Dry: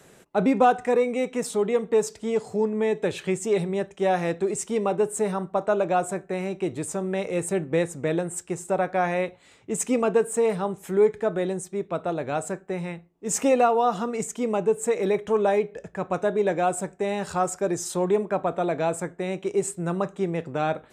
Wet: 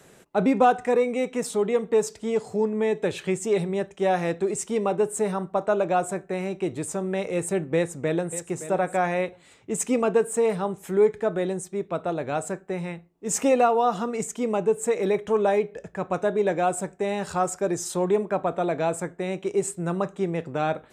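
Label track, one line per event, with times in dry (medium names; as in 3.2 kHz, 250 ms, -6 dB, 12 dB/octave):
7.750000	8.430000	echo throw 570 ms, feedback 15%, level -13 dB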